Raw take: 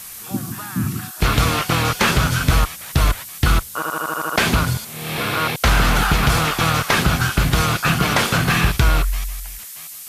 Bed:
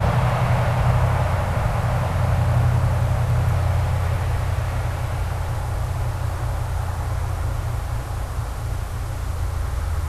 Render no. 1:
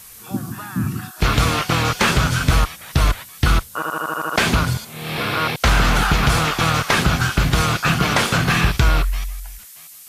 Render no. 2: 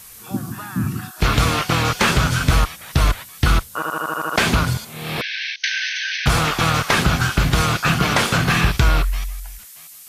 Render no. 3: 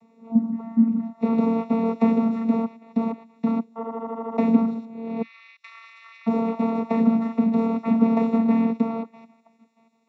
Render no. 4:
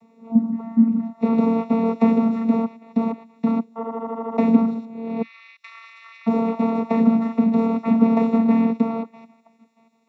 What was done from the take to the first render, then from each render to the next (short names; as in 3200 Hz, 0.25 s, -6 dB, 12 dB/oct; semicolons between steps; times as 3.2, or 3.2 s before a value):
noise print and reduce 6 dB
5.21–6.26 brick-wall FIR band-pass 1500–6400 Hz
vocoder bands 16, saw 227 Hz; running mean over 28 samples
gain +2.5 dB